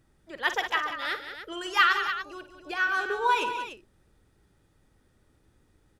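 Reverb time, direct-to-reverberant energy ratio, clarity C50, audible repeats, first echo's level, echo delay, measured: no reverb, no reverb, no reverb, 4, -11.0 dB, 52 ms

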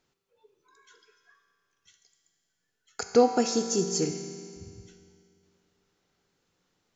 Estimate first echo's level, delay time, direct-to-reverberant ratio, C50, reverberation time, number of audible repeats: no echo, no echo, 5.0 dB, 6.5 dB, 2.4 s, no echo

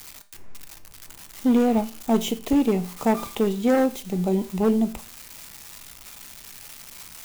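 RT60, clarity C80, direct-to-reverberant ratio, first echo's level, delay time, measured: 0.40 s, 21.0 dB, 10.0 dB, no echo, no echo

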